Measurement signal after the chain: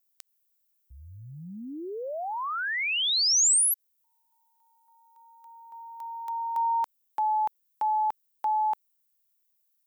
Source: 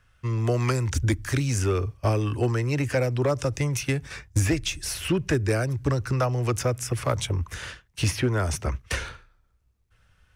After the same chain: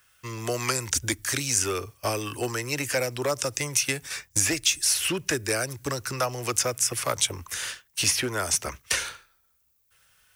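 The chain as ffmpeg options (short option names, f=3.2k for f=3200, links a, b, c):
-filter_complex "[0:a]aemphasis=mode=production:type=riaa,acrossover=split=9100[a][b];[b]acompressor=threshold=-36dB:ratio=4:attack=1:release=60[c];[a][c]amix=inputs=2:normalize=0"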